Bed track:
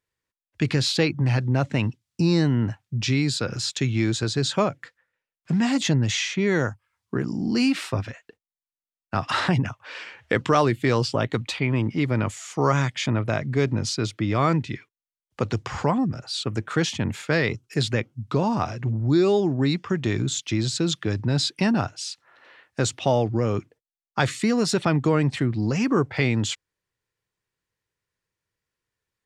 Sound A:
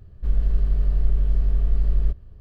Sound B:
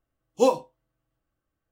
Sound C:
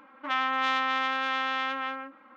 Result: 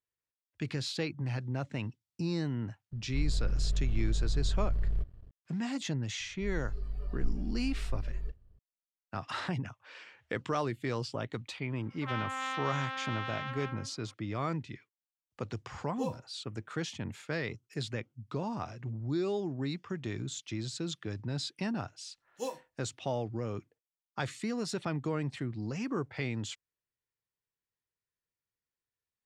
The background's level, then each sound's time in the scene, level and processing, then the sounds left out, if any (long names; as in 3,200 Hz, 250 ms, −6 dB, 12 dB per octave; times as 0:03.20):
bed track −13 dB
0:02.91: mix in A −14 dB + leveller curve on the samples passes 2
0:06.19: mix in A −3.5 dB + noise reduction from a noise print of the clip's start 13 dB
0:11.78: mix in C −9.5 dB
0:15.59: mix in B −17.5 dB
0:22.00: mix in B −18 dB + high-shelf EQ 3,500 Hz +10.5 dB